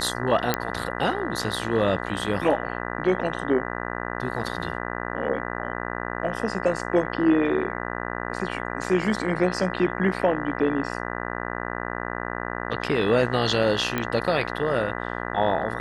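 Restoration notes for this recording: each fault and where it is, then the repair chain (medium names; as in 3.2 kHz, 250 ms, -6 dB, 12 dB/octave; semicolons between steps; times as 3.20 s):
buzz 60 Hz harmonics 33 -31 dBFS
0.54 s: pop -6 dBFS
13.98 s: pop -11 dBFS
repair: de-click; de-hum 60 Hz, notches 33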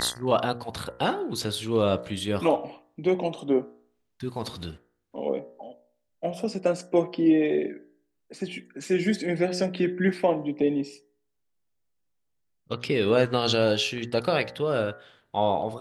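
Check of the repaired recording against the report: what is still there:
nothing left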